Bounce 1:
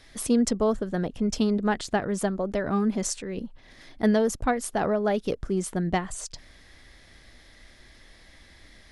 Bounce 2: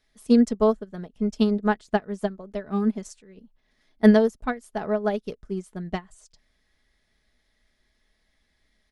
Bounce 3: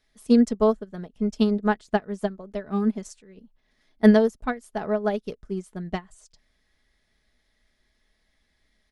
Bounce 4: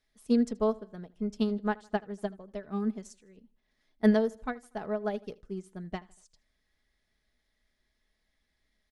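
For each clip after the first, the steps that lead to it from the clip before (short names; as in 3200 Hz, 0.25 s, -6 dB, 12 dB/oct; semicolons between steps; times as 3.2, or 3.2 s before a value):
comb 4.7 ms, depth 41%; upward expander 2.5:1, over -31 dBFS; gain +5.5 dB
nothing audible
feedback echo 79 ms, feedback 44%, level -23 dB; gain -7.5 dB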